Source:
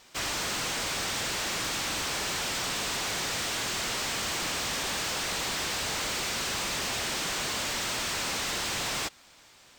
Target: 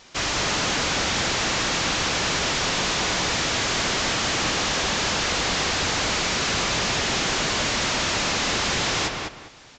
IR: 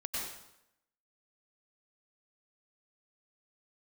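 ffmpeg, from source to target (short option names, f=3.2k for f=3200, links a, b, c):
-filter_complex "[0:a]lowshelf=f=340:g=3,asplit=2[a][b];[b]adelay=201,lowpass=f=2.9k:p=1,volume=-3dB,asplit=2[c][d];[d]adelay=201,lowpass=f=2.9k:p=1,volume=0.27,asplit=2[e][f];[f]adelay=201,lowpass=f=2.9k:p=1,volume=0.27,asplit=2[g][h];[h]adelay=201,lowpass=f=2.9k:p=1,volume=0.27[i];[c][e][g][i]amix=inputs=4:normalize=0[j];[a][j]amix=inputs=2:normalize=0,aresample=16000,aresample=44100,volume=6.5dB"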